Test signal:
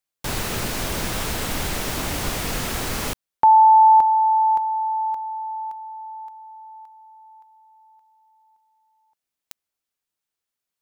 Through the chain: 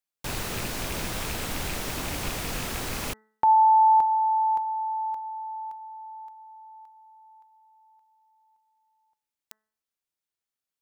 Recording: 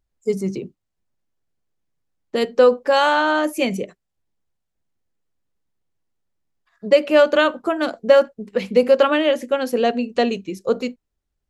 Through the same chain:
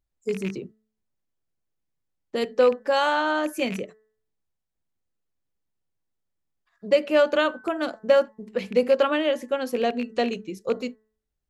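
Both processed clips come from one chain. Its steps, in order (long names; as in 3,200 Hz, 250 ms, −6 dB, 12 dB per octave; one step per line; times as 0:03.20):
loose part that buzzes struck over −26 dBFS, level −19 dBFS
hum removal 217.1 Hz, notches 9
level −5.5 dB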